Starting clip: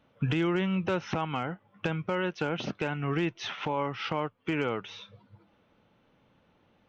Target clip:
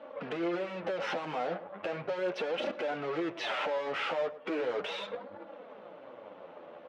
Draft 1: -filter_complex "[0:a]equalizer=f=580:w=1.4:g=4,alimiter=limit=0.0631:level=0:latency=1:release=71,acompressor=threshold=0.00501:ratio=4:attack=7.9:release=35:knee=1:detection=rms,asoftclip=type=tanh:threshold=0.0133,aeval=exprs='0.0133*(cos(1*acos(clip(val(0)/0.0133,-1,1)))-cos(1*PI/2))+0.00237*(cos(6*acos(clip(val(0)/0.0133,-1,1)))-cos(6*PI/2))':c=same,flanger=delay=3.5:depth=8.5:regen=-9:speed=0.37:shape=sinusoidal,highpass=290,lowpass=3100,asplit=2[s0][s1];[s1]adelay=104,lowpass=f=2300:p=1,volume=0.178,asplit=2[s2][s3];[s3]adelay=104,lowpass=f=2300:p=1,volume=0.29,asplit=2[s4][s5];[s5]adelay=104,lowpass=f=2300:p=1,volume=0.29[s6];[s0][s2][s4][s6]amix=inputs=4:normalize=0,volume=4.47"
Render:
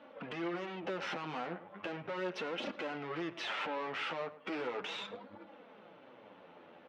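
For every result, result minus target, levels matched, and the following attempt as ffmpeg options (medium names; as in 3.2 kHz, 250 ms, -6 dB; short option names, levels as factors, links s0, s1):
compression: peak gain reduction +6 dB; 500 Hz band -2.5 dB
-filter_complex "[0:a]equalizer=f=580:w=1.4:g=4,alimiter=limit=0.0631:level=0:latency=1:release=71,acompressor=threshold=0.0126:ratio=4:attack=7.9:release=35:knee=1:detection=rms,asoftclip=type=tanh:threshold=0.0133,aeval=exprs='0.0133*(cos(1*acos(clip(val(0)/0.0133,-1,1)))-cos(1*PI/2))+0.00237*(cos(6*acos(clip(val(0)/0.0133,-1,1)))-cos(6*PI/2))':c=same,flanger=delay=3.5:depth=8.5:regen=-9:speed=0.37:shape=sinusoidal,highpass=290,lowpass=3100,asplit=2[s0][s1];[s1]adelay=104,lowpass=f=2300:p=1,volume=0.178,asplit=2[s2][s3];[s3]adelay=104,lowpass=f=2300:p=1,volume=0.29,asplit=2[s4][s5];[s5]adelay=104,lowpass=f=2300:p=1,volume=0.29[s6];[s0][s2][s4][s6]amix=inputs=4:normalize=0,volume=4.47"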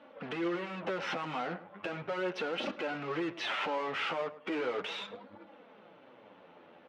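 500 Hz band -2.5 dB
-filter_complex "[0:a]equalizer=f=580:w=1.4:g=15.5,alimiter=limit=0.0631:level=0:latency=1:release=71,acompressor=threshold=0.0126:ratio=4:attack=7.9:release=35:knee=1:detection=rms,asoftclip=type=tanh:threshold=0.0133,aeval=exprs='0.0133*(cos(1*acos(clip(val(0)/0.0133,-1,1)))-cos(1*PI/2))+0.00237*(cos(6*acos(clip(val(0)/0.0133,-1,1)))-cos(6*PI/2))':c=same,flanger=delay=3.5:depth=8.5:regen=-9:speed=0.37:shape=sinusoidal,highpass=290,lowpass=3100,asplit=2[s0][s1];[s1]adelay=104,lowpass=f=2300:p=1,volume=0.178,asplit=2[s2][s3];[s3]adelay=104,lowpass=f=2300:p=1,volume=0.29,asplit=2[s4][s5];[s5]adelay=104,lowpass=f=2300:p=1,volume=0.29[s6];[s0][s2][s4][s6]amix=inputs=4:normalize=0,volume=4.47"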